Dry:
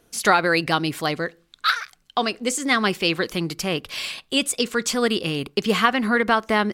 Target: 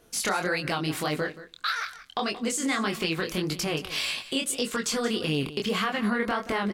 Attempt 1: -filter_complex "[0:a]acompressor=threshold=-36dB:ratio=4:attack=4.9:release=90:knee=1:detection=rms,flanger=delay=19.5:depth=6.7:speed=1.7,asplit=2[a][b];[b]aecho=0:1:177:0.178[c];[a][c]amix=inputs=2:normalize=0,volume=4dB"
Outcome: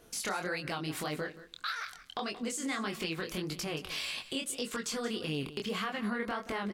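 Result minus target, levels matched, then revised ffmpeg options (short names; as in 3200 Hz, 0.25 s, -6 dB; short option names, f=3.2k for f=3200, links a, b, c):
compressor: peak gain reduction +8 dB
-filter_complex "[0:a]acompressor=threshold=-25.5dB:ratio=4:attack=4.9:release=90:knee=1:detection=rms,flanger=delay=19.5:depth=6.7:speed=1.7,asplit=2[a][b];[b]aecho=0:1:177:0.178[c];[a][c]amix=inputs=2:normalize=0,volume=4dB"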